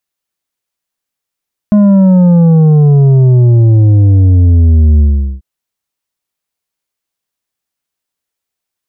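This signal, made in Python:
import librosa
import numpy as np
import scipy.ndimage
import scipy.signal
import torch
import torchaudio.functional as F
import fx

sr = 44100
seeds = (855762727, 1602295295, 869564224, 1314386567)

y = fx.sub_drop(sr, level_db=-4, start_hz=210.0, length_s=3.69, drive_db=7.0, fade_s=0.41, end_hz=65.0)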